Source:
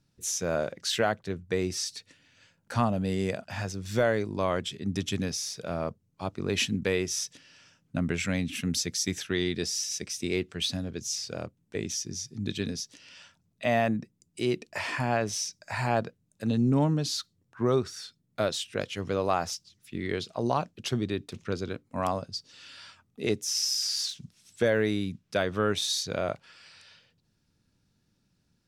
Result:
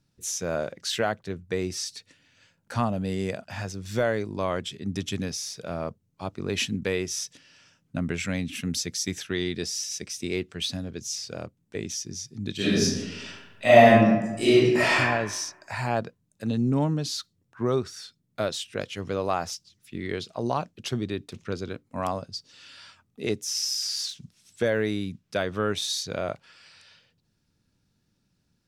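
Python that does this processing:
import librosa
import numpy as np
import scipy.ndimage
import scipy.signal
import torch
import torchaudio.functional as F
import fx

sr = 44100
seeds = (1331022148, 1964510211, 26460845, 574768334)

y = fx.reverb_throw(x, sr, start_s=12.56, length_s=2.42, rt60_s=1.1, drr_db=-11.5)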